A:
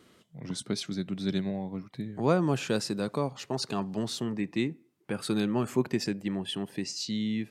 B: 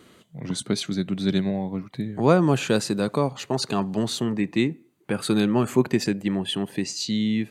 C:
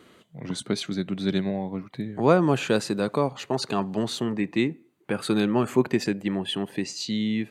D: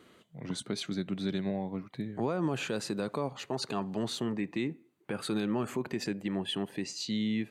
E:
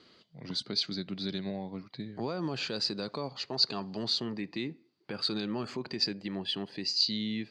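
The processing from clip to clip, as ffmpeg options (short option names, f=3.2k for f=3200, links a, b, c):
-af "bandreject=f=5.3k:w=6.9,volume=7dB"
-af "bass=f=250:g=-4,treble=f=4k:g=-5"
-af "alimiter=limit=-17dB:level=0:latency=1:release=78,volume=-5dB"
-af "lowpass=f=4.7k:t=q:w=9.2,volume=-3.5dB"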